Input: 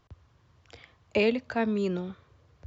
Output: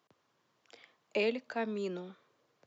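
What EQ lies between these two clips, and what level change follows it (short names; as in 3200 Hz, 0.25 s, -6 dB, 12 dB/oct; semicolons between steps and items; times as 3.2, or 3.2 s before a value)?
HPF 170 Hz 24 dB/oct; tilt +1.5 dB/oct; bell 470 Hz +3.5 dB 2 oct; -8.0 dB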